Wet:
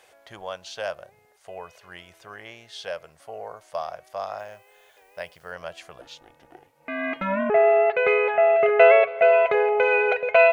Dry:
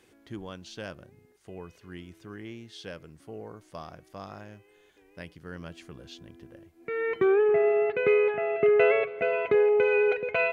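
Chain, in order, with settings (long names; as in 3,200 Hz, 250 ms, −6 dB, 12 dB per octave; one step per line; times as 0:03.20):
low shelf with overshoot 430 Hz −13 dB, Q 3
0:04.38–0:05.51: background noise blue −74 dBFS
0:06.01–0:07.50: ring modulation 190 Hz
level +6.5 dB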